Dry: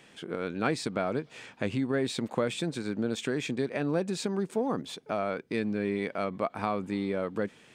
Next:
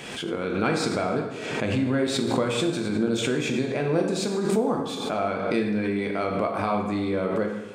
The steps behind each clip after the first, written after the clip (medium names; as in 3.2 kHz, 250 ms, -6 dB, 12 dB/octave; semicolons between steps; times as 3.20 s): band-stop 1.8 kHz, Q 13; plate-style reverb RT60 1.1 s, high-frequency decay 0.75×, DRR 1 dB; swell ahead of each attack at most 41 dB/s; trim +2.5 dB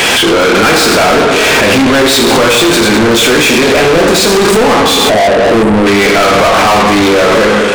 spectral selection erased 5.10–5.87 s, 740–7500 Hz; overdrive pedal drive 39 dB, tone 7 kHz, clips at -8.5 dBFS; trim +7.5 dB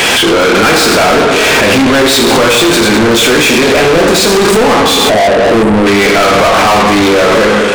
no audible change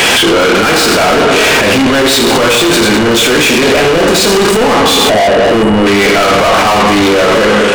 peak limiter -10 dBFS, peak gain reduction 8.5 dB; whistle 2.9 kHz -30 dBFS; trim +4.5 dB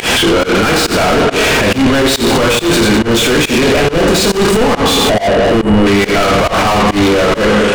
bass shelf 180 Hz +10 dB; volume shaper 139 bpm, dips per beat 1, -23 dB, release 112 ms; trim -3.5 dB